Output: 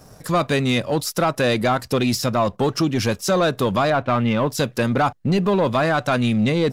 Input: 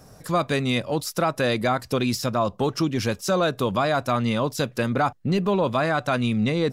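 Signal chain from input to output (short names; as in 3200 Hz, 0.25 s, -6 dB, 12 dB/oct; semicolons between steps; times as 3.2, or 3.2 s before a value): 3.9–4.49 steep low-pass 3300 Hz; sample leveller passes 1; gain +1 dB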